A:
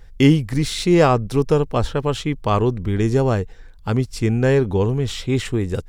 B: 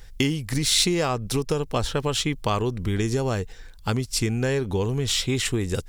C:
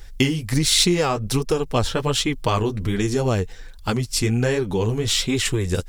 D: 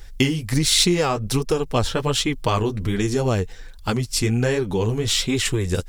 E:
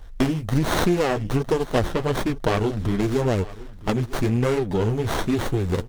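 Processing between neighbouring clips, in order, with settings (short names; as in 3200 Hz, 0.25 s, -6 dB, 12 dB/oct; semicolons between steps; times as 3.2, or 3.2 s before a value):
compressor 10:1, threshold -19 dBFS, peak gain reduction 11.5 dB; high shelf 2500 Hz +12 dB; gain -1.5 dB
flange 1.3 Hz, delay 2.2 ms, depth 9.6 ms, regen -17%; gain +6.5 dB
nothing audible
feedback echo 0.957 s, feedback 22%, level -19 dB; running maximum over 17 samples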